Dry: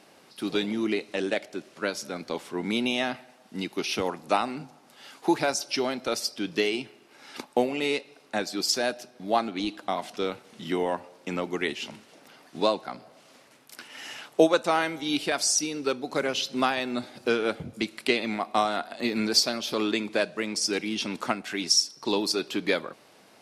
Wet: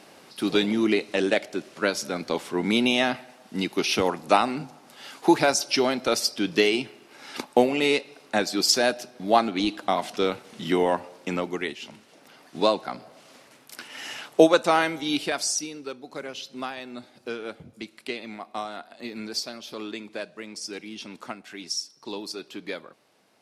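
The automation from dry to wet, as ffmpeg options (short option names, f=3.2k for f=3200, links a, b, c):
-af "volume=13dB,afade=t=out:st=11.13:d=0.65:silence=0.334965,afade=t=in:st=11.78:d=1.06:silence=0.398107,afade=t=out:st=14.81:d=1.07:silence=0.251189"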